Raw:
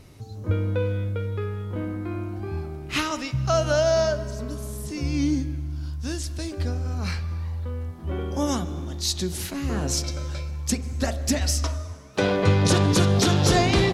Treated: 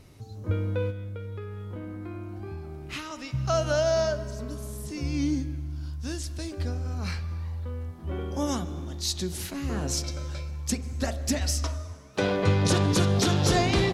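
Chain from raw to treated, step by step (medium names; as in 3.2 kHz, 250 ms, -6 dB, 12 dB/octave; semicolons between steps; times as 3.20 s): 0.90–3.34 s: compression, threshold -30 dBFS, peak gain reduction 9.5 dB; trim -3.5 dB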